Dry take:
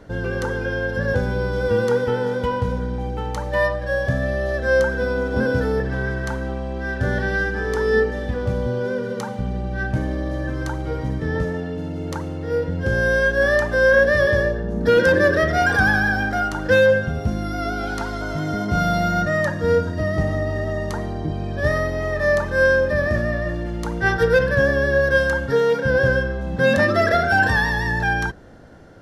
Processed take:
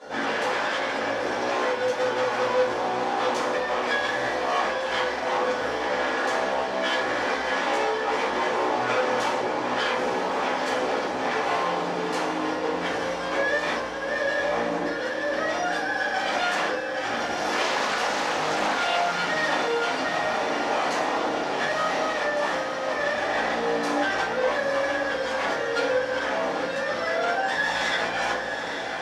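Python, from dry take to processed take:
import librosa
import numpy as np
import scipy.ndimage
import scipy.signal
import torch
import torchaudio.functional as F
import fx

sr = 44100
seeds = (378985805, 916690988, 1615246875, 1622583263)

y = fx.high_shelf(x, sr, hz=4200.0, db=9.5)
y = fx.over_compress(y, sr, threshold_db=-25.0, ratio=-1.0)
y = 10.0 ** (-18.0 / 20.0) * np.tanh(y / 10.0 ** (-18.0 / 20.0))
y = fx.chorus_voices(y, sr, voices=6, hz=0.43, base_ms=17, depth_ms=1.5, mix_pct=45)
y = 10.0 ** (-26.5 / 20.0) * (np.abs((y / 10.0 ** (-26.5 / 20.0) + 3.0) % 4.0 - 2.0) - 1.0)
y = fx.bandpass_edges(y, sr, low_hz=430.0, high_hz=6500.0)
y = fx.echo_diffused(y, sr, ms=884, feedback_pct=70, wet_db=-7)
y = fx.room_shoebox(y, sr, seeds[0], volume_m3=270.0, walls='furnished', distance_m=5.8)
y = fx.doppler_dist(y, sr, depth_ms=0.33, at=(17.67, 19.13))
y = y * 10.0 ** (-2.5 / 20.0)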